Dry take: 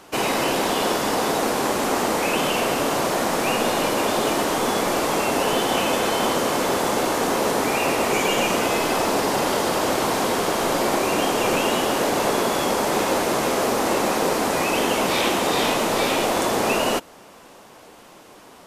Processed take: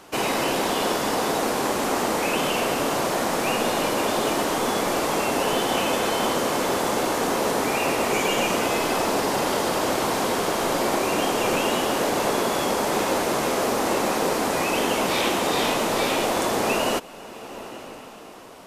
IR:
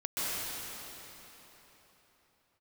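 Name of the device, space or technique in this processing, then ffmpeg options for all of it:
ducked reverb: -filter_complex "[0:a]asplit=3[a][b][c];[1:a]atrim=start_sample=2205[d];[b][d]afir=irnorm=-1:irlink=0[e];[c]apad=whole_len=823073[f];[e][f]sidechaincompress=threshold=-35dB:ratio=8:attack=11:release=605,volume=-12.5dB[g];[a][g]amix=inputs=2:normalize=0,volume=-2dB"

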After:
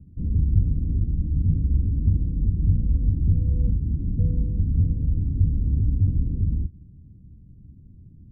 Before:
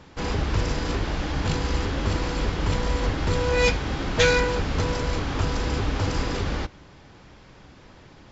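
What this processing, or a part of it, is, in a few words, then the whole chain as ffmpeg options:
the neighbour's flat through the wall: -af "lowpass=f=220:w=0.5412,lowpass=f=220:w=1.3066,equalizer=f=83:t=o:w=0.73:g=5.5,volume=3dB"

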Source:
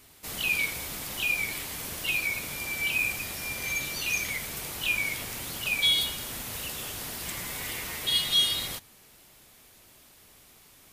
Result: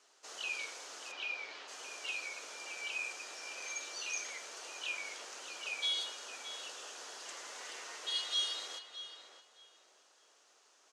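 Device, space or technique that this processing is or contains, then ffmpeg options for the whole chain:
phone speaker on a table: -filter_complex "[0:a]asplit=3[a][b][c];[a]afade=t=out:st=1.11:d=0.02[d];[b]lowpass=f=4.6k:w=0.5412,lowpass=f=4.6k:w=1.3066,afade=t=in:st=1.11:d=0.02,afade=t=out:st=1.67:d=0.02[e];[c]afade=t=in:st=1.67:d=0.02[f];[d][e][f]amix=inputs=3:normalize=0,highpass=f=410:w=0.5412,highpass=f=410:w=1.3066,equalizer=f=1.4k:t=q:w=4:g=3,equalizer=f=2.2k:t=q:w=4:g=-8,equalizer=f=3.6k:t=q:w=4:g=-4,equalizer=f=6.4k:t=q:w=4:g=5,lowpass=f=7k:w=0.5412,lowpass=f=7k:w=1.3066,asplit=2[g][h];[h]adelay=617,lowpass=f=3.1k:p=1,volume=-9.5dB,asplit=2[i][j];[j]adelay=617,lowpass=f=3.1k:p=1,volume=0.25,asplit=2[k][l];[l]adelay=617,lowpass=f=3.1k:p=1,volume=0.25[m];[g][i][k][m]amix=inputs=4:normalize=0,volume=-7.5dB"

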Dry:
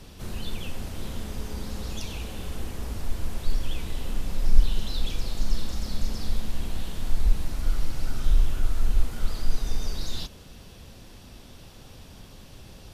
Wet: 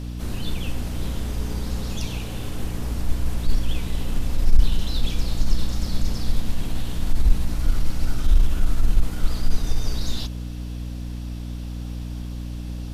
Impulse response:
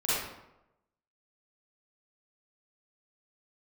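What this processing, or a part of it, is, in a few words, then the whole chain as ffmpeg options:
valve amplifier with mains hum: -af "aeval=exprs='(tanh(2.24*val(0)+0.3)-tanh(0.3))/2.24':c=same,aeval=exprs='val(0)+0.02*(sin(2*PI*60*n/s)+sin(2*PI*2*60*n/s)/2+sin(2*PI*3*60*n/s)/3+sin(2*PI*4*60*n/s)/4+sin(2*PI*5*60*n/s)/5)':c=same,volume=4.5dB"

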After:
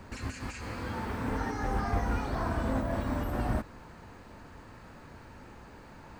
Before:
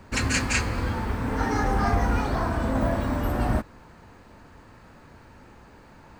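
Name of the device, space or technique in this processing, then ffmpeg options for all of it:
de-esser from a sidechain: -filter_complex "[0:a]asplit=2[a][b];[b]highpass=f=4.4k:w=0.5412,highpass=f=4.4k:w=1.3066,apad=whole_len=273049[c];[a][c]sidechaincompress=threshold=-55dB:ratio=3:attack=0.98:release=46,asettb=1/sr,asplit=3[d][e][f];[d]atrim=end=0.654[g];[e]atrim=start=0.65:end=1.28,asetpts=PTS-STARTPTS,afade=t=in:d=0.004:c=qsin,afade=t=out:st=0.626:d=0.004:c=qsin,highpass=f=120:p=1[h];[f]atrim=start=1.276[i];[g][h]acrossfade=d=0.004:c1=hsin:c2=qsin[j];[j][i]acrossfade=d=0.004:c1=qsin:c2=hsin"

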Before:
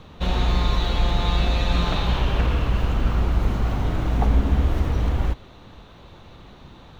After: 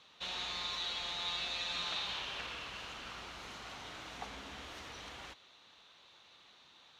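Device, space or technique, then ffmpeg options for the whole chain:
piezo pickup straight into a mixer: -af "lowpass=5.3k,aderivative,volume=1.5dB"

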